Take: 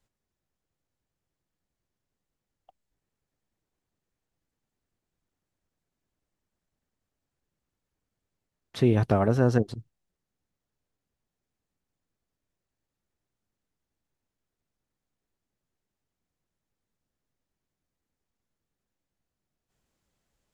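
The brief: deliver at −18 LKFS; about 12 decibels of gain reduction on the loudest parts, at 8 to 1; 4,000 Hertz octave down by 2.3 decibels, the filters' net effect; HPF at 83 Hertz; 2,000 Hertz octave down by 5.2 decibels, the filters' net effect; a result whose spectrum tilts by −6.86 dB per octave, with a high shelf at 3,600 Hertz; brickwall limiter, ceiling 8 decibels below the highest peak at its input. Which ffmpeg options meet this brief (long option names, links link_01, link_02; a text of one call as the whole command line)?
ffmpeg -i in.wav -af "highpass=83,equalizer=frequency=2000:width_type=o:gain=-8.5,highshelf=frequency=3600:gain=6,equalizer=frequency=4000:width_type=o:gain=-4.5,acompressor=threshold=-29dB:ratio=8,volume=20.5dB,alimiter=limit=-5dB:level=0:latency=1" out.wav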